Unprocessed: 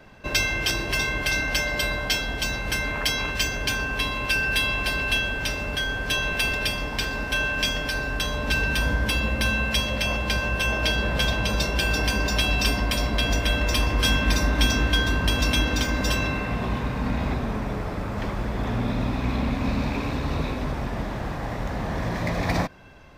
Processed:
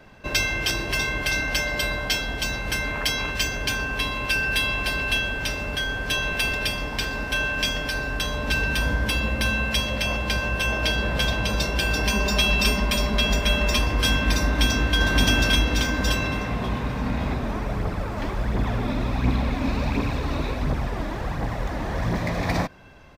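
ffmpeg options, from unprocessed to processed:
-filter_complex "[0:a]asettb=1/sr,asplit=3[a][b][c];[a]atrim=end=12.054[d];[b]atrim=start=12.05:end=13.79,asetpts=PTS-STARTPTS,afade=t=in:d=0.004:c=qsin,afade=t=out:st=1.736:d=0.004:c=qsin,aecho=1:1:4.9:0.65,atrim=end_sample=76734[e];[c]atrim=start=13.786[f];[d][e]acrossfade=d=0.004:c1=hsin:c2=qsin[g];[g][f]acrossfade=d=0.004:c1=qsin:c2=hsin,asplit=2[h][i];[i]afade=t=in:st=14.43:d=0.01,afade=t=out:st=14.98:d=0.01,aecho=0:1:570|1140|1710|2280|2850:0.944061|0.330421|0.115647|0.0404766|0.0141668[j];[h][j]amix=inputs=2:normalize=0,asplit=3[k][l][m];[k]afade=t=out:st=17.43:d=0.02[n];[l]aphaser=in_gain=1:out_gain=1:delay=3.6:decay=0.44:speed=1.4:type=triangular,afade=t=in:st=17.43:d=0.02,afade=t=out:st=22.18:d=0.02[o];[m]afade=t=in:st=22.18:d=0.02[p];[n][o][p]amix=inputs=3:normalize=0"

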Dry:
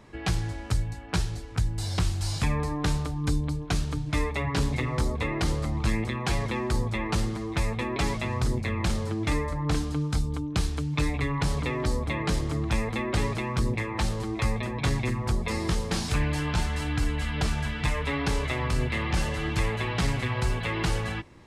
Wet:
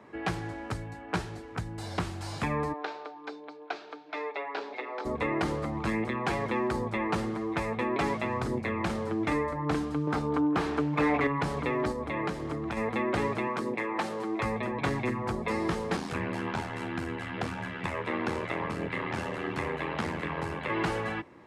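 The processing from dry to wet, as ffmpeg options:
-filter_complex "[0:a]asplit=3[a][b][c];[a]afade=t=out:st=2.72:d=0.02[d];[b]highpass=f=440:w=0.5412,highpass=f=440:w=1.3066,equalizer=f=530:t=q:w=4:g=-5,equalizer=f=1.1k:t=q:w=4:g=-8,equalizer=f=1.9k:t=q:w=4:g=-6,equalizer=f=3k:t=q:w=4:g=-4,lowpass=f=4.6k:w=0.5412,lowpass=f=4.6k:w=1.3066,afade=t=in:st=2.72:d=0.02,afade=t=out:st=5.04:d=0.02[e];[c]afade=t=in:st=5.04:d=0.02[f];[d][e][f]amix=inputs=3:normalize=0,asettb=1/sr,asplit=3[g][h][i];[g]atrim=end=10.074[j];[h]atrim=start=10.07:end=11.27,asetpts=PTS-STARTPTS,afade=t=in:d=0.004:c=qsin,afade=t=out:st=1.196:d=0.004:c=qsin,asplit=2[k][l];[l]highpass=f=720:p=1,volume=22dB,asoftclip=type=tanh:threshold=-15dB[m];[k][m]amix=inputs=2:normalize=0,lowpass=f=1.2k:p=1,volume=-6dB[n];[i]atrim=start=11.266[o];[j][n]acrossfade=d=0.004:c1=hsin:c2=qsin[p];[p][o]acrossfade=d=0.004:c1=qsin:c2=hsin,asettb=1/sr,asplit=3[q][r][s];[q]atrim=end=11.914[t];[r]atrim=start=11.91:end=12.77,asetpts=PTS-STARTPTS,afade=t=in:d=0.004:c=qsin,afade=t=out:st=0.856:d=0.004:c=qsin,acompressor=threshold=-26dB:ratio=6:attack=3.2:release=140:knee=1:detection=peak[u];[s]atrim=start=12.766[v];[t][u]acrossfade=d=0.004:c1=hsin:c2=qsin[w];[w][v]acrossfade=d=0.004:c1=qsin:c2=hsin,asettb=1/sr,asplit=3[x][y][z];[x]atrim=end=13.474[aa];[y]atrim=start=13.47:end=14.4,asetpts=PTS-STARTPTS,afade=t=in:d=0.004:c=qsin,afade=t=out:st=0.926:d=0.004:c=qsin,highpass=230[ab];[z]atrim=start=14.396[ac];[aa][ab]acrossfade=d=0.004:c1=hsin:c2=qsin[ad];[ad][ac]acrossfade=d=0.004:c1=qsin:c2=hsin,asettb=1/sr,asplit=3[ae][af][ag];[ae]atrim=end=15.964[ah];[af]atrim=start=15.96:end=20.7,asetpts=PTS-STARTPTS,afade=t=in:d=0.004:c=qsin,afade=t=out:st=4.736:d=0.004:c=qsin,aeval=exprs='val(0)*sin(2*PI*41*n/s)':c=same[ai];[ag]atrim=start=20.696[aj];[ah][ai]acrossfade=d=0.004:c1=hsin:c2=qsin[ak];[ak][aj]acrossfade=d=0.004:c1=qsin:c2=hsin,highpass=67,acrossover=split=200 2300:gain=0.224 1 0.224[al][am][an];[al][am][an]amix=inputs=3:normalize=0,volume=2.5dB"

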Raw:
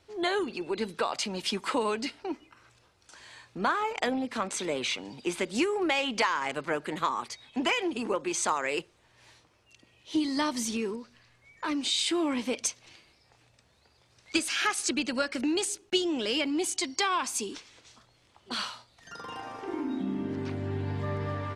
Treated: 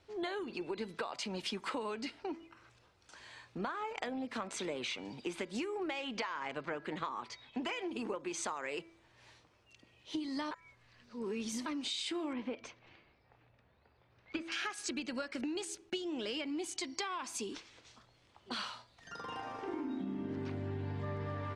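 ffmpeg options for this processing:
-filter_complex "[0:a]asettb=1/sr,asplit=3[a][b][c];[a]atrim=end=6.174[d];[b]atrim=start=6.17:end=7.6,asetpts=PTS-STARTPTS,afade=t=in:d=0.004:c=qsin,afade=t=out:st=1.426:d=0.004:c=qsin,lowpass=5.9k[e];[c]atrim=start=7.596[f];[d][e]acrossfade=d=0.004:c1=hsin:c2=qsin[g];[g][f]acrossfade=d=0.004:c1=qsin:c2=hsin,asettb=1/sr,asplit=3[h][i][j];[h]atrim=end=12.334[k];[i]atrim=start=12.33:end=14.52,asetpts=PTS-STARTPTS,afade=t=in:d=0.004:c=qsin,afade=t=out:st=2.186:d=0.004:c=qsin,lowpass=2.3k[l];[j]atrim=start=14.516[m];[k][l]acrossfade=d=0.004:c1=hsin:c2=qsin[n];[n][m]acrossfade=d=0.004:c1=qsin:c2=hsin,asplit=3[o][p][q];[o]atrim=end=10.512[r];[p]atrim=start=10.508:end=11.662,asetpts=PTS-STARTPTS,areverse[s];[q]atrim=start=11.658[t];[r][s]acrossfade=d=0.004:c1=hsin:c2=hsin[u];[u][t]acrossfade=d=0.004:c1=hsin:c2=hsin,highshelf=f=8.1k:g=-11.5,bandreject=f=331.7:t=h:w=4,bandreject=f=663.4:t=h:w=4,bandreject=f=995.1:t=h:w=4,bandreject=f=1.3268k:t=h:w=4,bandreject=f=1.6585k:t=h:w=4,bandreject=f=1.9902k:t=h:w=4,bandreject=f=2.3219k:t=h:w=4,acompressor=threshold=-33dB:ratio=6,volume=-2.5dB"

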